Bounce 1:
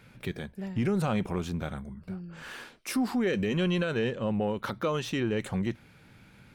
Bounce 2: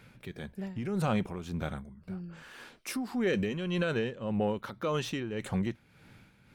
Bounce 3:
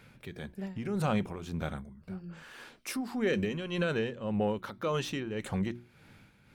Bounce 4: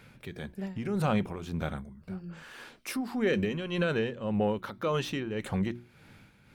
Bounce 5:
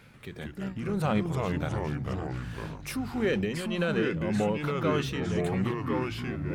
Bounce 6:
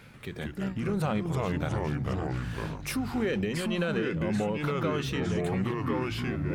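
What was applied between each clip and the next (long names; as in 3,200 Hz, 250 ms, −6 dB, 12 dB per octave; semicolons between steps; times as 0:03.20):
amplitude tremolo 1.8 Hz, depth 63%
mains-hum notches 60/120/180/240/300/360 Hz
dynamic equaliser 7,100 Hz, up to −4 dB, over −57 dBFS, Q 1.2; level +2 dB
delay with pitch and tempo change per echo 139 ms, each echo −3 semitones, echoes 3
downward compressor, threshold −28 dBFS, peak gain reduction 6.5 dB; level +3 dB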